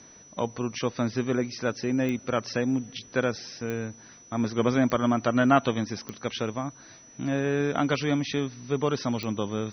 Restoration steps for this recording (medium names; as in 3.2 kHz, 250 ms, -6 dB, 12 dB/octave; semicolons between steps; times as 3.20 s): de-click; band-stop 5.9 kHz, Q 30